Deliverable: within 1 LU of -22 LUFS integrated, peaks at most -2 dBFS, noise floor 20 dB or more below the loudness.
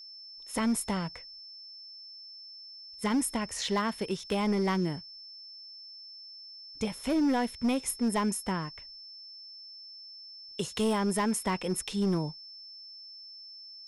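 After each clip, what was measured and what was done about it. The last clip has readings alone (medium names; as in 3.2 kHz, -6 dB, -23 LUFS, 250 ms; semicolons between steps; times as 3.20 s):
clipped samples 1.5%; clipping level -22.5 dBFS; steady tone 5.3 kHz; tone level -45 dBFS; loudness -30.5 LUFS; peak level -22.5 dBFS; loudness target -22.0 LUFS
-> clip repair -22.5 dBFS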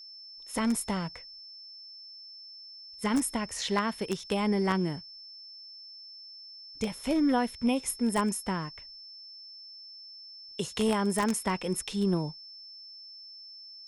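clipped samples 0.0%; steady tone 5.3 kHz; tone level -45 dBFS
-> band-stop 5.3 kHz, Q 30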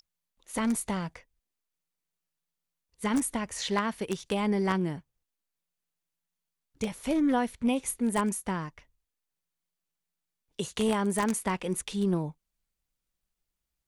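steady tone not found; loudness -30.0 LUFS; peak level -13.5 dBFS; loudness target -22.0 LUFS
-> trim +8 dB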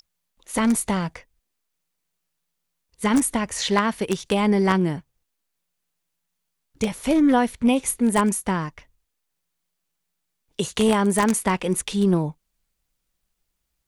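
loudness -22.0 LUFS; peak level -5.5 dBFS; noise floor -78 dBFS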